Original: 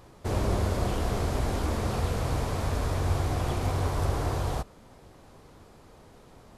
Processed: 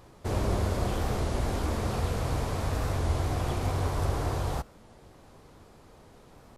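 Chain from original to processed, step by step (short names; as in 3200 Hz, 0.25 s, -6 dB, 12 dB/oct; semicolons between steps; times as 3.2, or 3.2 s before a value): record warp 33 1/3 rpm, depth 160 cents; gain -1 dB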